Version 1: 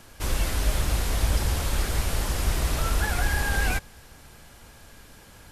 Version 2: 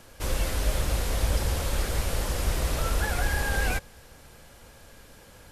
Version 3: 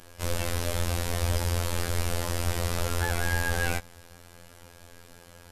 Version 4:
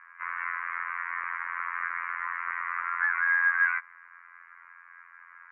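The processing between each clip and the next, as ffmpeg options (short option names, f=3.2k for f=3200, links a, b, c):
-af "equalizer=f=520:t=o:w=0.4:g=6.5,volume=-2dB"
-af "afftfilt=real='hypot(re,im)*cos(PI*b)':imag='0':win_size=2048:overlap=0.75,volume=3.5dB"
-af "asuperpass=centerf=1500:order=12:qfactor=1.3,volume=8.5dB"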